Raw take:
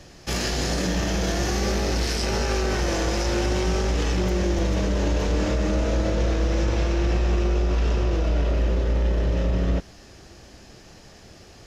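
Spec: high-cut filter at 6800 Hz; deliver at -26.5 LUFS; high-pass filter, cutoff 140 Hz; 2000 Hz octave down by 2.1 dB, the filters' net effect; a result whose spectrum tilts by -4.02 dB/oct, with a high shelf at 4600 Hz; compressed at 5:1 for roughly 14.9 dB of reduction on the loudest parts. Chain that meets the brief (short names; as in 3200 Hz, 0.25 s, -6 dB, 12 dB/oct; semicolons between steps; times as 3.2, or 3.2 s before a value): HPF 140 Hz; LPF 6800 Hz; bell 2000 Hz -4 dB; high shelf 4600 Hz +7 dB; compressor 5:1, threshold -40 dBFS; gain +15 dB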